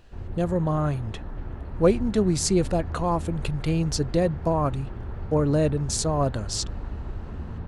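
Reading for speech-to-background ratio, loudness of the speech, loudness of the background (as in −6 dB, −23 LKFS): 11.5 dB, −25.0 LKFS, −36.5 LKFS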